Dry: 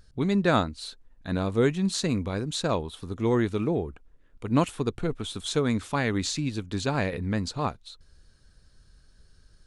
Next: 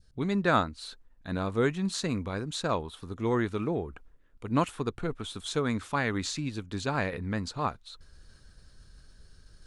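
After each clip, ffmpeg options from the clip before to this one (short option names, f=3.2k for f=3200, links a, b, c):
-af "areverse,acompressor=mode=upward:threshold=-38dB:ratio=2.5,areverse,adynamicequalizer=threshold=0.01:dfrequency=1300:dqfactor=1:tfrequency=1300:tqfactor=1:attack=5:release=100:ratio=0.375:range=3:mode=boostabove:tftype=bell,volume=-4.5dB"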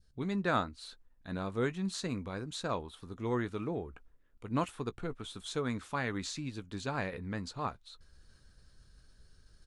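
-filter_complex "[0:a]asplit=2[a][b];[b]adelay=16,volume=-14dB[c];[a][c]amix=inputs=2:normalize=0,volume=-6dB"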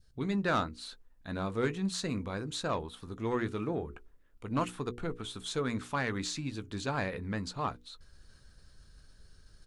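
-af "asoftclip=type=tanh:threshold=-24.5dB,bandreject=f=60:t=h:w=6,bandreject=f=120:t=h:w=6,bandreject=f=180:t=h:w=6,bandreject=f=240:t=h:w=6,bandreject=f=300:t=h:w=6,bandreject=f=360:t=h:w=6,bandreject=f=420:t=h:w=6,bandreject=f=480:t=h:w=6,volume=3.5dB"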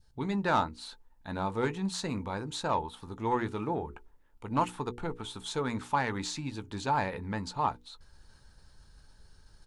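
-af "equalizer=f=880:t=o:w=0.28:g=14.5"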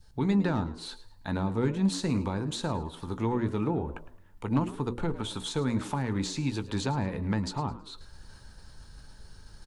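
-filter_complex "[0:a]acrossover=split=330[a][b];[b]acompressor=threshold=-41dB:ratio=10[c];[a][c]amix=inputs=2:normalize=0,asplit=4[d][e][f][g];[e]adelay=108,afreqshift=87,volume=-16dB[h];[f]adelay=216,afreqshift=174,volume=-26.2dB[i];[g]adelay=324,afreqshift=261,volume=-36.3dB[j];[d][h][i][j]amix=inputs=4:normalize=0,volume=7.5dB"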